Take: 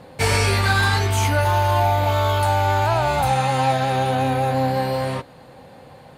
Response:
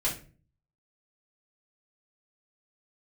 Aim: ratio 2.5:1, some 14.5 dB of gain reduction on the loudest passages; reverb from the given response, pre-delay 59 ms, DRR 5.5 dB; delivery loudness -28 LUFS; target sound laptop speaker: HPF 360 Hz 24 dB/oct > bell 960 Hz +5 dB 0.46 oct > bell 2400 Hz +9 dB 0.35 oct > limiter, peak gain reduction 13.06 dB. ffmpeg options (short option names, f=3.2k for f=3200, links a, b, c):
-filter_complex "[0:a]acompressor=threshold=-38dB:ratio=2.5,asplit=2[a][b];[1:a]atrim=start_sample=2205,adelay=59[c];[b][c]afir=irnorm=-1:irlink=0,volume=-12.5dB[d];[a][d]amix=inputs=2:normalize=0,highpass=f=360:w=0.5412,highpass=f=360:w=1.3066,equalizer=f=960:t=o:w=0.46:g=5,equalizer=f=2.4k:t=o:w=0.35:g=9,volume=11dB,alimiter=limit=-20.5dB:level=0:latency=1"